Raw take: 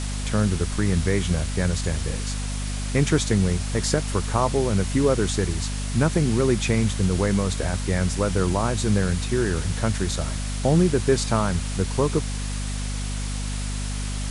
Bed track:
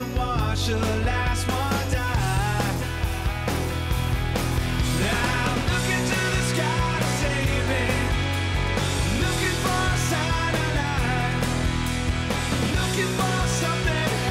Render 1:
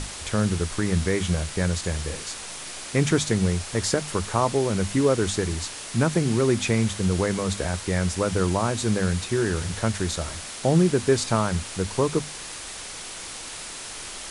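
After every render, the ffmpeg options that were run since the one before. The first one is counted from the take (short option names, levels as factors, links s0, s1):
-af "bandreject=f=50:t=h:w=6,bandreject=f=100:t=h:w=6,bandreject=f=150:t=h:w=6,bandreject=f=200:t=h:w=6,bandreject=f=250:t=h:w=6"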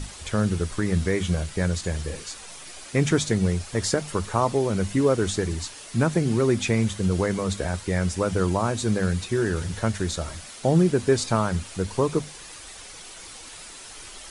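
-af "afftdn=nr=8:nf=-37"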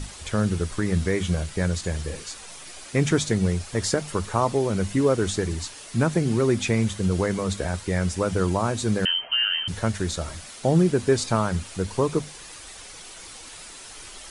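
-filter_complex "[0:a]asettb=1/sr,asplit=3[s0][s1][s2];[s0]atrim=end=9.054[s3];[s1]atrim=start=9.05:end=9.68,asetpts=PTS-STARTPTS,afade=t=in:d=0.004:c=qsin,afade=t=out:st=0.626:d=0.004:c=qsin,lowpass=f=2700:t=q:w=0.5098,lowpass=f=2700:t=q:w=0.6013,lowpass=f=2700:t=q:w=0.9,lowpass=f=2700:t=q:w=2.563,afreqshift=-3200[s4];[s2]atrim=start=9.676[s5];[s3][s4]acrossfade=d=0.004:c1=hsin:c2=qsin[s6];[s6][s5]acrossfade=d=0.004:c1=qsin:c2=hsin"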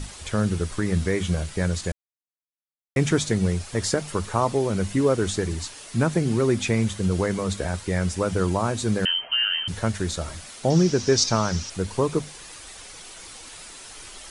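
-filter_complex "[0:a]asettb=1/sr,asplit=3[s0][s1][s2];[s0]atrim=end=10.704[s3];[s1]atrim=start=10.7:end=11.7,asetpts=PTS-STARTPTS,afade=t=in:d=0.004:c=qsin,afade=t=out:st=0.996:d=0.004:c=qsin,lowpass=f=5700:t=q:w=5.8[s4];[s2]atrim=start=11.696[s5];[s3][s4]acrossfade=d=0.004:c1=hsin:c2=qsin[s6];[s6][s5]acrossfade=d=0.004:c1=qsin:c2=hsin,asplit=3[s7][s8][s9];[s7]atrim=end=1.92,asetpts=PTS-STARTPTS,afade=t=out:st=1.916:d=0.004:c=hsin[s10];[s8]atrim=start=1.92:end=2.96,asetpts=PTS-STARTPTS,volume=0[s11];[s9]atrim=start=2.96,asetpts=PTS-STARTPTS,afade=t=in:d=0.004:c=hsin[s12];[s10][s11][s12]concat=n=3:v=0:a=1"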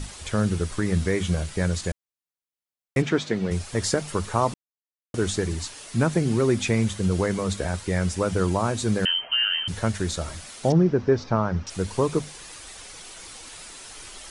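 -filter_complex "[0:a]asplit=3[s0][s1][s2];[s0]afade=t=out:st=3.01:d=0.02[s3];[s1]highpass=200,lowpass=3700,afade=t=in:st=3.01:d=0.02,afade=t=out:st=3.5:d=0.02[s4];[s2]afade=t=in:st=3.5:d=0.02[s5];[s3][s4][s5]amix=inputs=3:normalize=0,asettb=1/sr,asplit=3[s6][s7][s8];[s6]atrim=end=10.724[s9];[s7]atrim=start=10.72:end=11.67,asetpts=PTS-STARTPTS,afade=t=in:d=0.004:c=qsin,afade=t=out:st=0.946:d=0.004:c=qsin,lowpass=1500[s10];[s8]atrim=start=11.666[s11];[s9][s10]acrossfade=d=0.004:c1=hsin:c2=qsin[s12];[s12][s11]acrossfade=d=0.004:c1=qsin:c2=hsin,asplit=3[s13][s14][s15];[s13]atrim=end=4.54,asetpts=PTS-STARTPTS,afade=t=out:st=4.536:d=0.004:c=hsin[s16];[s14]atrim=start=4.54:end=5.14,asetpts=PTS-STARTPTS,volume=0[s17];[s15]atrim=start=5.14,asetpts=PTS-STARTPTS,afade=t=in:d=0.004:c=hsin[s18];[s16][s17][s18]concat=n=3:v=0:a=1"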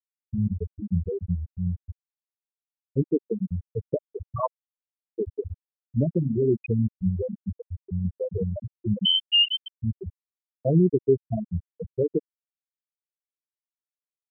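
-af "afftfilt=real='re*gte(hypot(re,im),0.501)':imag='im*gte(hypot(re,im),0.501)':win_size=1024:overlap=0.75,equalizer=f=4200:w=0.31:g=6.5"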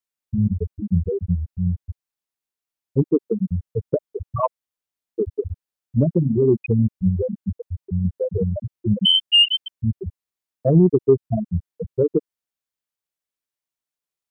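-af "acontrast=45"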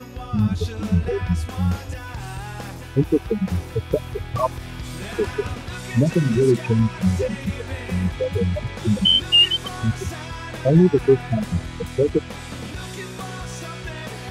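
-filter_complex "[1:a]volume=0.355[s0];[0:a][s0]amix=inputs=2:normalize=0"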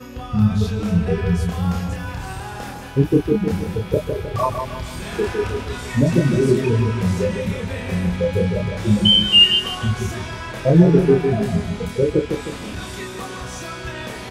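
-filter_complex "[0:a]asplit=2[s0][s1];[s1]adelay=29,volume=0.708[s2];[s0][s2]amix=inputs=2:normalize=0,asplit=2[s3][s4];[s4]adelay=155,lowpass=f=2000:p=1,volume=0.531,asplit=2[s5][s6];[s6]adelay=155,lowpass=f=2000:p=1,volume=0.47,asplit=2[s7][s8];[s8]adelay=155,lowpass=f=2000:p=1,volume=0.47,asplit=2[s9][s10];[s10]adelay=155,lowpass=f=2000:p=1,volume=0.47,asplit=2[s11][s12];[s12]adelay=155,lowpass=f=2000:p=1,volume=0.47,asplit=2[s13][s14];[s14]adelay=155,lowpass=f=2000:p=1,volume=0.47[s15];[s3][s5][s7][s9][s11][s13][s15]amix=inputs=7:normalize=0"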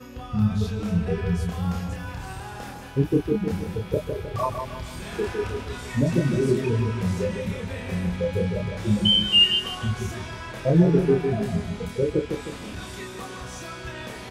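-af "volume=0.531"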